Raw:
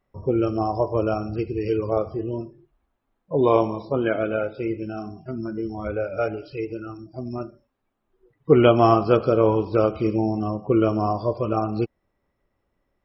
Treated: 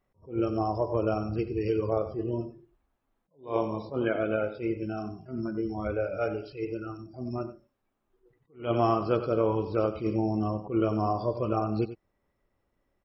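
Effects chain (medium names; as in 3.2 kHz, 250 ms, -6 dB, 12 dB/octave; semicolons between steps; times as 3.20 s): compression 2:1, threshold -22 dBFS, peak gain reduction 7.5 dB; on a send: delay 93 ms -13 dB; on the sum: attacks held to a fixed rise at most 190 dB/s; trim -2.5 dB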